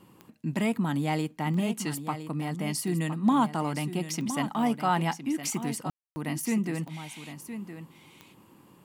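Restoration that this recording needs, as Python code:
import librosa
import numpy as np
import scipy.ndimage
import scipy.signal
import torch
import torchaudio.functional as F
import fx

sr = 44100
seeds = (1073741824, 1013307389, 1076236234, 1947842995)

y = fx.fix_declick_ar(x, sr, threshold=10.0)
y = fx.fix_ambience(y, sr, seeds[0], print_start_s=8.33, print_end_s=8.83, start_s=5.9, end_s=6.16)
y = fx.fix_echo_inverse(y, sr, delay_ms=1013, level_db=-10.5)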